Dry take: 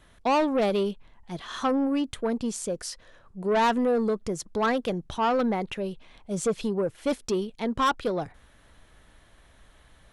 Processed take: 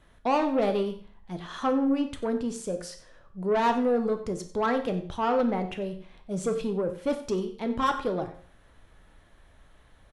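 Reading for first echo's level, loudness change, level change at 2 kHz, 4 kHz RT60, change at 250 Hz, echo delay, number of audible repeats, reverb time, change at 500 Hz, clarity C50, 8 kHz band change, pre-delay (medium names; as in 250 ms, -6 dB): -16.5 dB, -1.0 dB, -3.0 dB, 0.50 s, -0.5 dB, 92 ms, 1, 0.50 s, -0.5 dB, 10.5 dB, -6.5 dB, 11 ms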